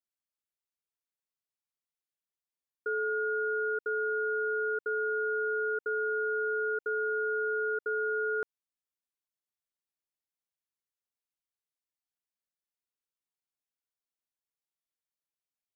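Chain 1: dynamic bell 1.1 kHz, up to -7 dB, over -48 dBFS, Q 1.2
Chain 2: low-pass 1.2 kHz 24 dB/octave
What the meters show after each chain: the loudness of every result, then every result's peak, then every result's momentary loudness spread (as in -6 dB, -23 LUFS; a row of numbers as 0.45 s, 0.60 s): -34.0 LUFS, -34.0 LUFS; -26.0 dBFS, -27.5 dBFS; 1 LU, 1 LU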